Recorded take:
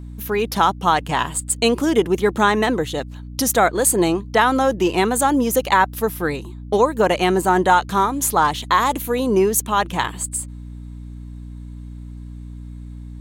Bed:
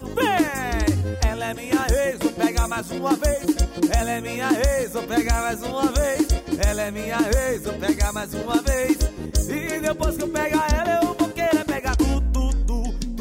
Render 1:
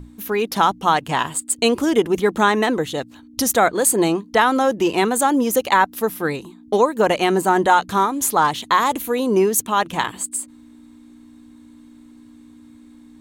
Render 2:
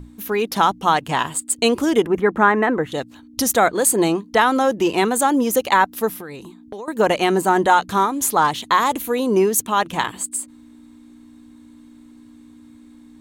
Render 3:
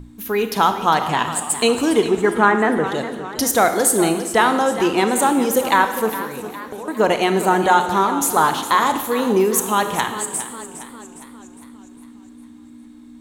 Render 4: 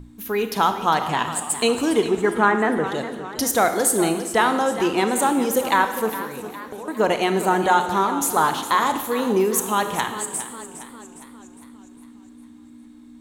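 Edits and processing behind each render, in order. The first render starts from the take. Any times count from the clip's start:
mains-hum notches 60/120/180 Hz
0:02.06–0:02.92: high shelf with overshoot 2,700 Hz −14 dB, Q 1.5; 0:06.15–0:06.88: downward compressor 8 to 1, threshold −30 dBFS
four-comb reverb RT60 1.2 s, combs from 25 ms, DRR 8 dB; feedback echo with a swinging delay time 407 ms, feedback 52%, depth 99 cents, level −13 dB
level −3 dB

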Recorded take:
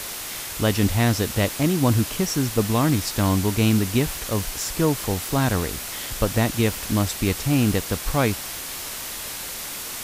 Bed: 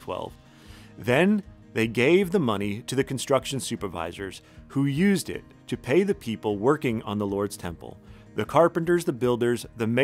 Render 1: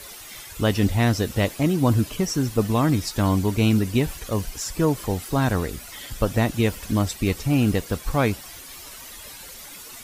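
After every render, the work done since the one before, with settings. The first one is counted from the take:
broadband denoise 12 dB, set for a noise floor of −33 dBFS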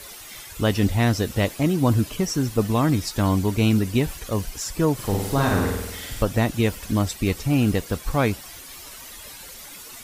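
0:04.94–0:06.23: flutter between parallel walls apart 8.5 metres, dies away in 0.9 s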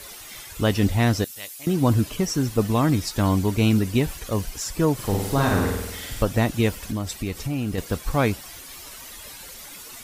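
0:01.24–0:01.67: first-order pre-emphasis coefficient 0.97
0:06.76–0:07.78: downward compressor 2.5 to 1, threshold −25 dBFS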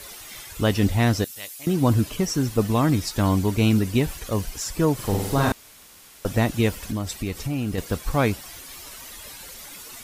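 0:05.52–0:06.25: fill with room tone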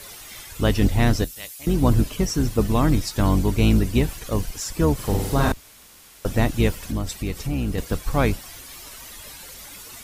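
sub-octave generator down 2 octaves, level −1 dB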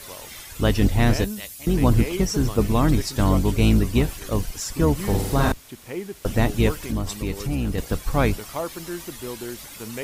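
mix in bed −10.5 dB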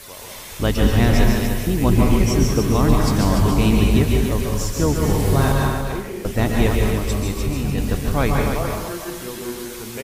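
single-tap delay 292 ms −7 dB
dense smooth reverb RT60 0.81 s, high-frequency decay 0.75×, pre-delay 120 ms, DRR 0 dB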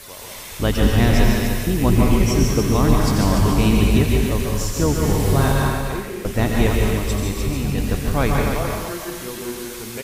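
delay with a high-pass on its return 88 ms, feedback 72%, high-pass 1,600 Hz, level −8 dB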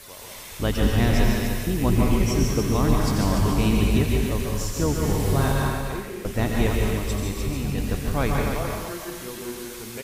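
level −4.5 dB

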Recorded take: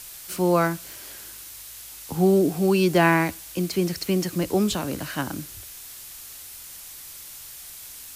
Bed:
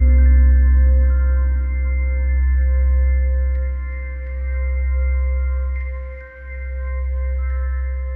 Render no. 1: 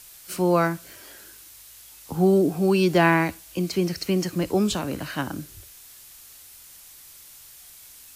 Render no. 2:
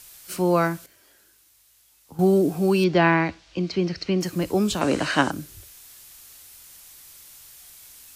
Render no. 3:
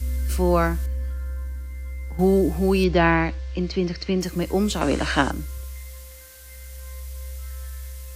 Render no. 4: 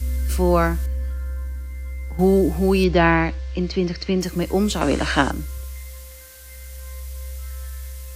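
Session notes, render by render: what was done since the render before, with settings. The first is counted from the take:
noise reduction from a noise print 6 dB
0:00.86–0:02.19: clip gain −12 dB; 0:02.84–0:04.21: low-pass filter 5,100 Hz 24 dB per octave; 0:04.81–0:05.31: drawn EQ curve 110 Hz 0 dB, 380 Hz +10 dB, 8,400 Hz +9 dB, 13,000 Hz −16 dB
mix in bed −13.5 dB
level +2 dB

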